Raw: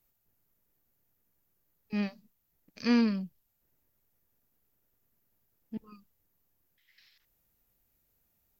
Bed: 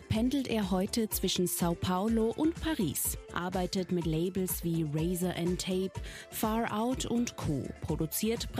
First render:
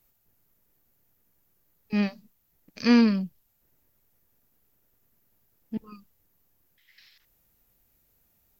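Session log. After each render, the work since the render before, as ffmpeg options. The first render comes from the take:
-af "volume=6.5dB"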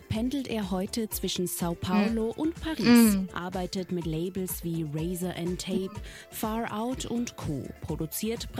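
-filter_complex "[1:a]volume=0dB[a];[0:a][a]amix=inputs=2:normalize=0"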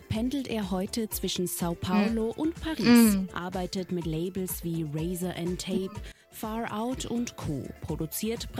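-filter_complex "[0:a]asplit=2[a][b];[a]atrim=end=6.12,asetpts=PTS-STARTPTS,afade=t=out:st=6.116:d=0.004:c=hsin:silence=0.105925[c];[b]atrim=start=6.12,asetpts=PTS-STARTPTS,afade=t=in:d=0.57:silence=0.105925[d];[c][d]concat=n=2:v=0:a=1"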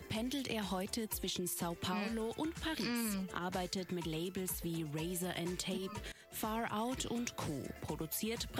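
-filter_complex "[0:a]alimiter=limit=-21.5dB:level=0:latency=1:release=111,acrossover=split=210|820[a][b][c];[a]acompressor=threshold=-47dB:ratio=4[d];[b]acompressor=threshold=-42dB:ratio=4[e];[c]acompressor=threshold=-38dB:ratio=4[f];[d][e][f]amix=inputs=3:normalize=0"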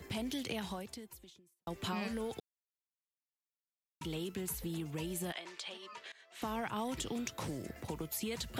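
-filter_complex "[0:a]asettb=1/sr,asplit=3[a][b][c];[a]atrim=end=5.324[d];[b]atrim=start=5.32:end=6.42,asetpts=PTS-STARTPTS,afade=t=in:d=0.004:c=qsin,afade=t=out:st=1.096:d=0.004:c=qsin,highpass=710,lowpass=5k[e];[c]atrim=start=6.416[f];[d][e]acrossfade=d=0.004:c1=hsin:c2=qsin[g];[g][f]acrossfade=d=0.004:c1=qsin:c2=hsin,asplit=4[h][i][j][k];[h]atrim=end=1.67,asetpts=PTS-STARTPTS,afade=t=out:st=0.53:d=1.14:c=qua[l];[i]atrim=start=1.67:end=2.4,asetpts=PTS-STARTPTS,afade=t=in:d=0.004:c=hsin,afade=t=out:st=0.726:d=0.004:c=hsin[m];[j]atrim=start=2.4:end=4.01,asetpts=PTS-STARTPTS,volume=0[n];[k]atrim=start=4.01,asetpts=PTS-STARTPTS,afade=t=in:d=0.004:c=hsin[o];[l][m][n][o]concat=n=4:v=0:a=1"

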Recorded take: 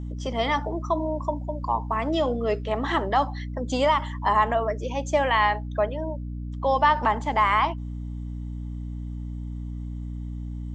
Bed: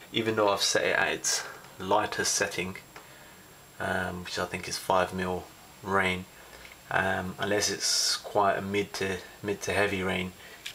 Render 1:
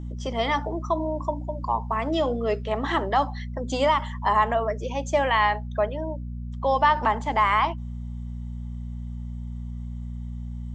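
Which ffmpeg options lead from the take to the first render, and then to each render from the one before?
-af "bandreject=f=50:t=h:w=6,bandreject=f=100:t=h:w=6,bandreject=f=150:t=h:w=6,bandreject=f=200:t=h:w=6,bandreject=f=250:t=h:w=6,bandreject=f=300:t=h:w=6"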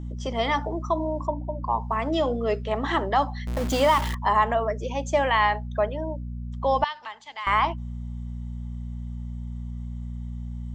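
-filter_complex "[0:a]asettb=1/sr,asplit=3[a][b][c];[a]atrim=end=1.274[d];[b]atrim=start=1.27:end=1.73,asetpts=PTS-STARTPTS,afade=t=in:d=0.004:c=qsin,afade=t=out:st=0.456:d=0.004:c=qsin,lowpass=2.3k[e];[c]atrim=start=1.726[f];[d][e]acrossfade=d=0.004:c1=hsin:c2=qsin[g];[g][f]acrossfade=d=0.004:c1=qsin:c2=hsin,asettb=1/sr,asplit=3[h][i][j];[h]atrim=end=3.474[k];[i]atrim=start=3.47:end=4.15,asetpts=PTS-STARTPTS,afade=t=in:d=0.004:c=qsin,afade=t=out:st=0.676:d=0.004:c=qsin,aeval=exprs='val(0)+0.5*0.0447*sgn(val(0))':c=same[l];[j]atrim=start=4.146[m];[k][l]acrossfade=d=0.004:c1=hsin:c2=qsin[n];[n][m]acrossfade=d=0.004:c1=qsin:c2=hsin,asettb=1/sr,asplit=3[o][p][q];[o]atrim=end=6.844[r];[p]atrim=start=6.84:end=7.47,asetpts=PTS-STARTPTS,afade=t=in:d=0.004:c=qsin,afade=t=out:st=0.626:d=0.004:c=qsin,bandpass=f=3.9k:t=q:w=1.6[s];[q]atrim=start=7.466[t];[r][s]acrossfade=d=0.004:c1=hsin:c2=qsin[u];[u][t]acrossfade=d=0.004:c1=qsin:c2=hsin"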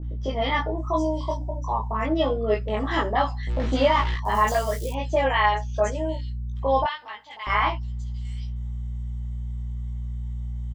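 -filter_complex "[0:a]asplit=2[a][b];[b]adelay=19,volume=-2.5dB[c];[a][c]amix=inputs=2:normalize=0,acrossover=split=930|4900[d][e][f];[e]adelay=30[g];[f]adelay=780[h];[d][g][h]amix=inputs=3:normalize=0"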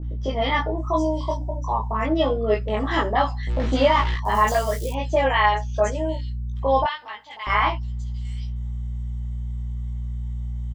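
-af "volume=2dB"

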